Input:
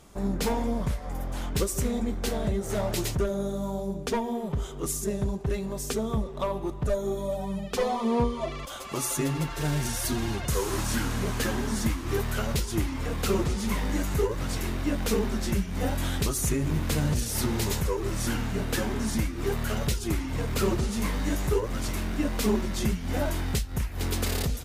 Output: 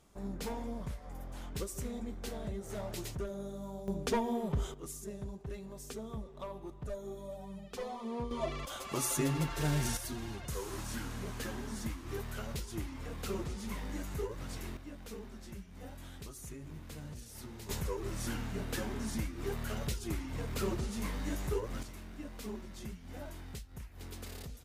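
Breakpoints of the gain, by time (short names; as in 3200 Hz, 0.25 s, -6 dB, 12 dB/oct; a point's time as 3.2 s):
-12 dB
from 3.88 s -3.5 dB
from 4.74 s -14 dB
from 8.31 s -4 dB
from 9.97 s -12 dB
from 14.77 s -20 dB
from 17.69 s -9 dB
from 21.83 s -17.5 dB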